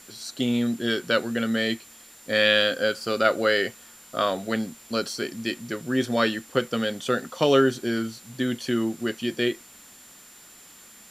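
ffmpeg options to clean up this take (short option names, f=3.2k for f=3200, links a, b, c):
-af "bandreject=f=7.2k:w=30,afftdn=nr=20:nf=-49"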